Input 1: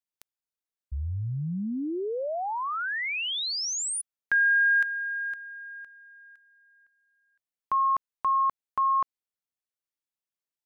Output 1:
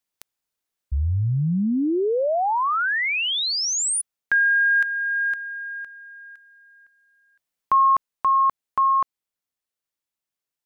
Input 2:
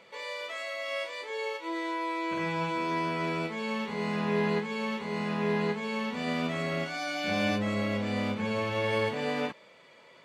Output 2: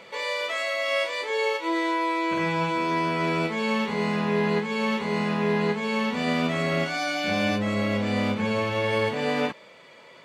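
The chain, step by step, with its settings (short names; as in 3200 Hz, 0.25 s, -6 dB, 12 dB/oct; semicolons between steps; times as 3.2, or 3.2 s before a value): vocal rider within 3 dB 0.5 s; gain +6 dB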